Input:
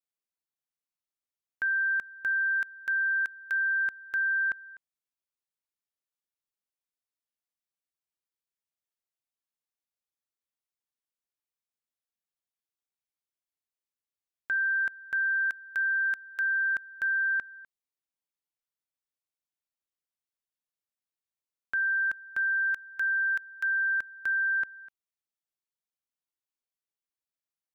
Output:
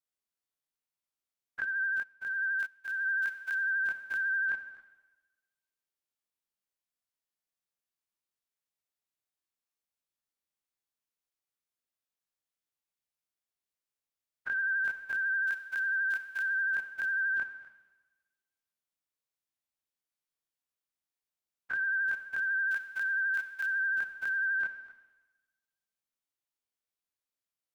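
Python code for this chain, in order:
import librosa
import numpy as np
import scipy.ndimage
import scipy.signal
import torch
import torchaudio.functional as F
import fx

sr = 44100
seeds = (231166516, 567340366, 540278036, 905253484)

y = fx.spec_dilate(x, sr, span_ms=60)
y = fx.rev_schroeder(y, sr, rt60_s=1.2, comb_ms=29, drr_db=9.0)
y = fx.vibrato(y, sr, rate_hz=12.0, depth_cents=38.0)
y = fx.upward_expand(y, sr, threshold_db=-36.0, expansion=2.5, at=(1.64, 3.06))
y = y * librosa.db_to_amplitude(-4.5)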